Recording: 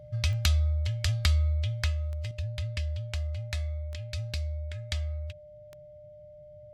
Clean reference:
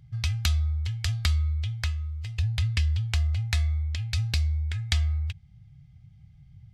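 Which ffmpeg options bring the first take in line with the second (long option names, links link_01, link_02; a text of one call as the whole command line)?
ffmpeg -i in.wav -af "adeclick=threshold=4,bandreject=frequency=600:width=30,asetnsamples=nb_out_samples=441:pad=0,asendcmd='2.31 volume volume 7.5dB',volume=0dB" out.wav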